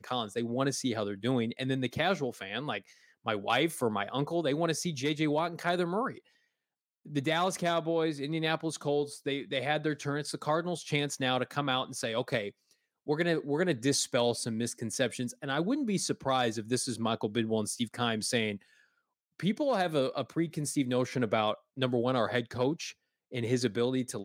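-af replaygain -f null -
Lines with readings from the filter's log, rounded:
track_gain = +11.7 dB
track_peak = 0.139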